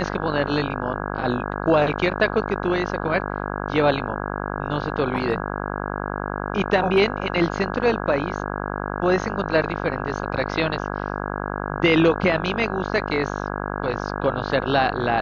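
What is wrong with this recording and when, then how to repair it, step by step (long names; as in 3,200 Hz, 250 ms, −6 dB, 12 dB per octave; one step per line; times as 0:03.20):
mains buzz 50 Hz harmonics 33 −28 dBFS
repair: hum removal 50 Hz, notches 33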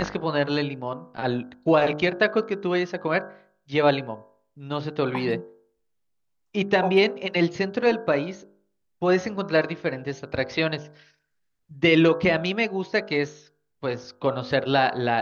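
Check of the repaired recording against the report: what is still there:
none of them is left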